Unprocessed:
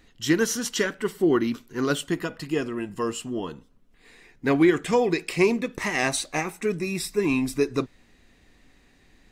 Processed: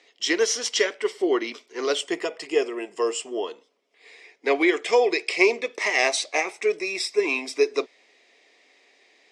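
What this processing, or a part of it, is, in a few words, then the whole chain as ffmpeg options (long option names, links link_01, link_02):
phone speaker on a table: -filter_complex "[0:a]highpass=frequency=380:width=0.5412,highpass=frequency=380:width=1.3066,equalizer=frequency=430:width_type=q:width=4:gain=5,equalizer=frequency=650:width_type=q:width=4:gain=6,equalizer=frequency=1500:width_type=q:width=4:gain=-6,equalizer=frequency=2200:width_type=q:width=4:gain=9,equalizer=frequency=3300:width_type=q:width=4:gain=5,equalizer=frequency=5200:width_type=q:width=4:gain=8,lowpass=frequency=8500:width=0.5412,lowpass=frequency=8500:width=1.3066,asettb=1/sr,asplit=3[link_01][link_02][link_03];[link_01]atrim=end=2.004[link_04];[link_02]atrim=start=2:end=3.44,asetpts=PTS-STARTPTS,afade=type=in:duration=0.004:curve=qsin,afade=type=out:start_time=1.436:duration=0.004:curve=qsin,equalizer=frequency=160:width_type=o:width=0.33:gain=9,equalizer=frequency=400:width_type=o:width=0.33:gain=6,equalizer=frequency=800:width_type=o:width=0.33:gain=3,equalizer=frequency=4000:width_type=o:width=0.33:gain=-5,equalizer=frequency=8000:width_type=o:width=0.33:gain=7[link_05];[link_03]atrim=start=3.436[link_06];[link_04][link_05]acrossfade=duration=0.004:curve1=hsin:curve2=qsin[link_07];[link_07][link_06]acrossfade=duration=0.004:curve1=qsin:curve2=hsin"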